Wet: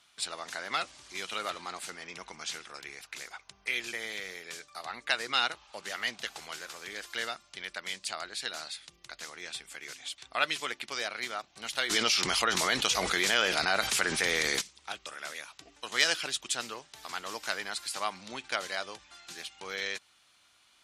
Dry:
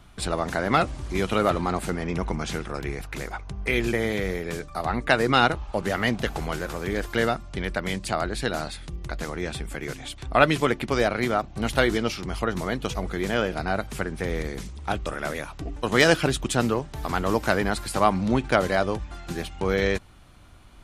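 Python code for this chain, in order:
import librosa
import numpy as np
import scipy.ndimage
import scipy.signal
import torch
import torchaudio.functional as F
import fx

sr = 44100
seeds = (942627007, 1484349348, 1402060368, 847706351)

y = fx.bandpass_q(x, sr, hz=5200.0, q=0.76)
y = fx.env_flatten(y, sr, amount_pct=70, at=(11.89, 14.6), fade=0.02)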